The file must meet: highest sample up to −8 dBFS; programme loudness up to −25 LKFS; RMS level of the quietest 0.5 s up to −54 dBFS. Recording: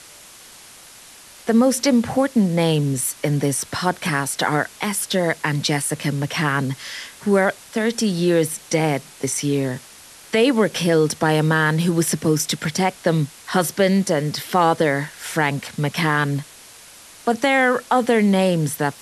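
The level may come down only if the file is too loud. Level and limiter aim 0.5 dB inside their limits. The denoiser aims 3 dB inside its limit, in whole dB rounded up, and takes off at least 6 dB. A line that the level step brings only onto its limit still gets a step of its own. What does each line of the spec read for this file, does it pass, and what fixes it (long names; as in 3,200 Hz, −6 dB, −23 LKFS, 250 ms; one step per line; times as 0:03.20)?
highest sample −5.5 dBFS: out of spec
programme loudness −20.0 LKFS: out of spec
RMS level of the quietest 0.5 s −44 dBFS: out of spec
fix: broadband denoise 8 dB, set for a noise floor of −44 dBFS
level −5.5 dB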